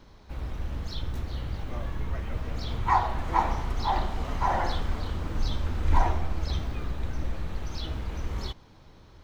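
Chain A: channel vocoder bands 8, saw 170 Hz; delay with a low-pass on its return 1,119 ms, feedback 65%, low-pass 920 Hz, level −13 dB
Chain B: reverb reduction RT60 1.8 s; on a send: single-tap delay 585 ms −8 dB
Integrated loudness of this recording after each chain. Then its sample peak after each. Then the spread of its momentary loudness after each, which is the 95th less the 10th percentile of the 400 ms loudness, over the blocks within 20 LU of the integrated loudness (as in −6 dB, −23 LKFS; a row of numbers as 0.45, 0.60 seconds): −35.0, −32.5 LKFS; −12.5, −9.0 dBFS; 10, 12 LU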